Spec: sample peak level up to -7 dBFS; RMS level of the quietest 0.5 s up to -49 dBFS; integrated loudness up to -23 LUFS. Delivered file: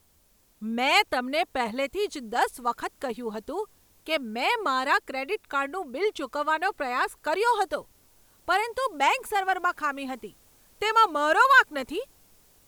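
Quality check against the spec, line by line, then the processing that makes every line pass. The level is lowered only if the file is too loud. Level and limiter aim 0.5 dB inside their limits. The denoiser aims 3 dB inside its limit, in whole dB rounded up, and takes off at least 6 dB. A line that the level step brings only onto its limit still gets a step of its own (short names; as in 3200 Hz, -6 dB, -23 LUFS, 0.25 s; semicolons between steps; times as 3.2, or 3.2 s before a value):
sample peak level -6.5 dBFS: fail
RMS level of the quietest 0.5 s -63 dBFS: OK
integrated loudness -26.0 LUFS: OK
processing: limiter -7.5 dBFS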